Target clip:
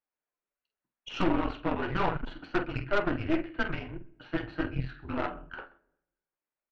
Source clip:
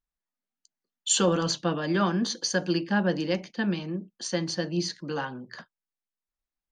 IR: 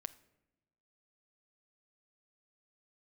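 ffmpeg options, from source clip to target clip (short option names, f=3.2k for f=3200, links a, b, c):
-filter_complex "[0:a]lowshelf=f=390:t=q:w=1.5:g=-7,asplit=2[a][b];[b]acompressor=threshold=-36dB:ratio=6,volume=-3dB[c];[a][c]amix=inputs=2:normalize=0,flanger=delay=5.3:depth=8.6:regen=61:speed=0.7:shape=triangular,asoftclip=type=hard:threshold=-22.5dB,highpass=f=170:t=q:w=0.5412,highpass=f=170:t=q:w=1.307,lowpass=f=2.8k:t=q:w=0.5176,lowpass=f=2.8k:t=q:w=0.7071,lowpass=f=2.8k:t=q:w=1.932,afreqshift=-210,flanger=delay=3.3:depth=9.3:regen=-48:speed=1.5:shape=sinusoidal,asplit=2[d][e];[e]adelay=47,volume=-8.5dB[f];[d][f]amix=inputs=2:normalize=0,aecho=1:1:129:0.0944,asplit=2[g][h];[1:a]atrim=start_sample=2205,lowpass=6.3k[i];[h][i]afir=irnorm=-1:irlink=0,volume=7.5dB[j];[g][j]amix=inputs=2:normalize=0,aeval=exprs='0.335*(cos(1*acos(clip(val(0)/0.335,-1,1)))-cos(1*PI/2))+0.0422*(cos(8*acos(clip(val(0)/0.335,-1,1)))-cos(8*PI/2))':c=same,volume=-3dB"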